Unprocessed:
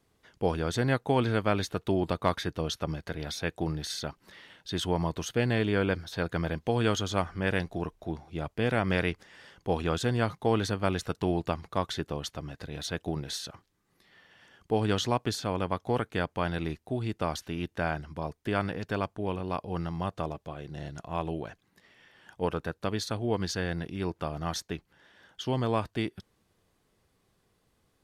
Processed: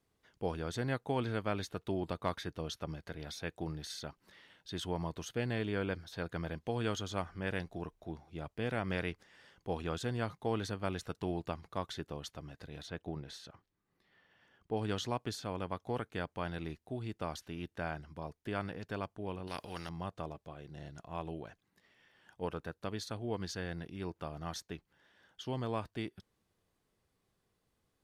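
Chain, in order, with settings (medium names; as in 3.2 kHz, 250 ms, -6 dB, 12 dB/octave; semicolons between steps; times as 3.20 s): 12.82–14.77 s: treble shelf 4.7 kHz -11 dB; 19.47–19.89 s: spectrum-flattening compressor 2:1; trim -8.5 dB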